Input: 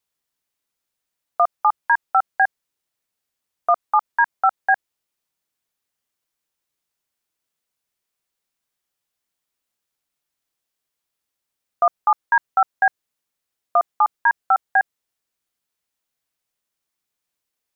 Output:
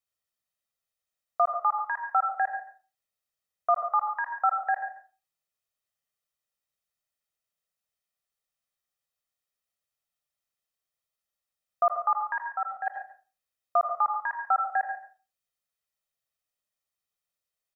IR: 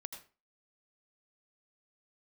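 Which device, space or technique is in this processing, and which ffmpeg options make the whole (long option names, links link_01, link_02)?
microphone above a desk: -filter_complex "[0:a]asettb=1/sr,asplit=3[link_01][link_02][link_03];[link_01]atrim=end=12.454[link_04];[link_02]atrim=start=12.45:end=12.87,asetpts=PTS-STARTPTS,afade=type=in:duration=0.004:curve=qsin,afade=type=out:start_time=0.416:duration=0.004:curve=qsin,agate=range=-7dB:threshold=-13dB:ratio=16:detection=peak[link_05];[link_03]atrim=start=12.866[link_06];[link_04][link_05]acrossfade=duration=0.004:curve1=hsin:curve2=qsin[link_07];[link_07][link_06]acrossfade=duration=0.004:curve1=qsin:curve2=hsin,aecho=1:1:1.6:0.52,asplit=2[link_08][link_09];[link_09]adelay=139.9,volume=-14dB,highshelf=frequency=4000:gain=-3.15[link_10];[link_08][link_10]amix=inputs=2:normalize=0[link_11];[1:a]atrim=start_sample=2205[link_12];[link_11][link_12]afir=irnorm=-1:irlink=0,volume=-5dB"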